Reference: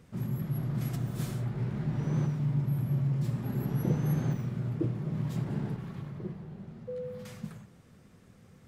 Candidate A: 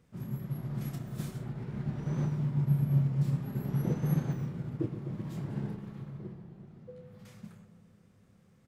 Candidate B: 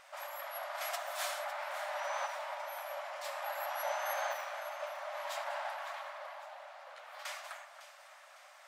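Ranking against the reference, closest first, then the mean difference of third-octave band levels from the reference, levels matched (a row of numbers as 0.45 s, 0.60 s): A, B; 3.0 dB, 22.5 dB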